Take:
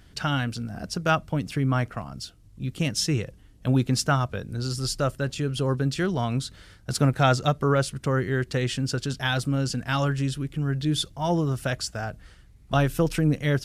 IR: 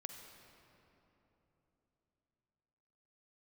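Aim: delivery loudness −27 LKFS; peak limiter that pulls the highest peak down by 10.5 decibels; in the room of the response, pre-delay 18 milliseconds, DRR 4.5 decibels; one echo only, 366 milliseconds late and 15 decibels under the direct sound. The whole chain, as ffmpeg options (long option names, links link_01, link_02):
-filter_complex "[0:a]alimiter=limit=-17.5dB:level=0:latency=1,aecho=1:1:366:0.178,asplit=2[link_01][link_02];[1:a]atrim=start_sample=2205,adelay=18[link_03];[link_02][link_03]afir=irnorm=-1:irlink=0,volume=-1dB[link_04];[link_01][link_04]amix=inputs=2:normalize=0,volume=0.5dB"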